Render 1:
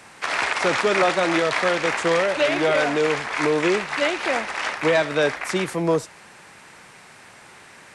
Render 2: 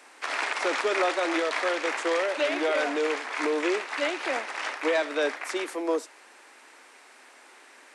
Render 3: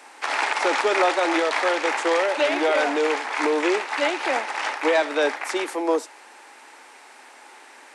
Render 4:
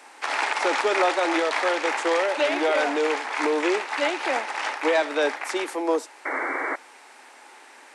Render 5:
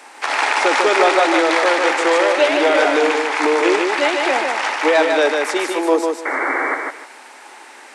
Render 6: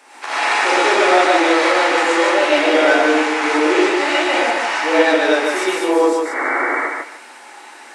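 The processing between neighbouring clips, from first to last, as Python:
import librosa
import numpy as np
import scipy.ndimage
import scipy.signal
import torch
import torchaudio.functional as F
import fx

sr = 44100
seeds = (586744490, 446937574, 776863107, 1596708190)

y1 = scipy.signal.sosfilt(scipy.signal.butter(12, 250.0, 'highpass', fs=sr, output='sos'), x)
y1 = y1 * 10.0 ** (-6.0 / 20.0)
y2 = fx.peak_eq(y1, sr, hz=850.0, db=8.5, octaves=0.22)
y2 = y2 * 10.0 ** (4.5 / 20.0)
y3 = fx.spec_paint(y2, sr, seeds[0], shape='noise', start_s=6.25, length_s=0.51, low_hz=260.0, high_hz=2300.0, level_db=-26.0)
y3 = y3 * 10.0 ** (-1.5 / 20.0)
y4 = fx.echo_feedback(y3, sr, ms=150, feedback_pct=23, wet_db=-4.0)
y4 = y4 * 10.0 ** (6.5 / 20.0)
y5 = fx.rev_gated(y4, sr, seeds[1], gate_ms=150, shape='rising', drr_db=-8.0)
y5 = y5 * 10.0 ** (-7.5 / 20.0)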